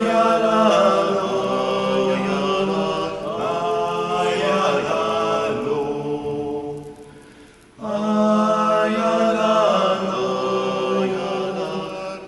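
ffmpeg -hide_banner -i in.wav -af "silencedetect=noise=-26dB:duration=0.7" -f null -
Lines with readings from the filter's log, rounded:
silence_start: 6.87
silence_end: 7.83 | silence_duration: 0.95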